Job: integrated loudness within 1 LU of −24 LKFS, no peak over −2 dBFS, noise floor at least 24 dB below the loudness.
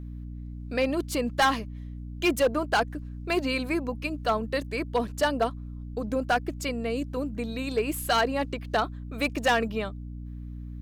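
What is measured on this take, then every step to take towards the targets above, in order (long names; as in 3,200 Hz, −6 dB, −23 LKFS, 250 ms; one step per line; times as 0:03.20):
share of clipped samples 0.7%; peaks flattened at −17.0 dBFS; mains hum 60 Hz; hum harmonics up to 300 Hz; level of the hum −35 dBFS; integrated loudness −28.0 LKFS; sample peak −17.0 dBFS; target loudness −24.0 LKFS
→ clipped peaks rebuilt −17 dBFS
hum removal 60 Hz, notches 5
level +4 dB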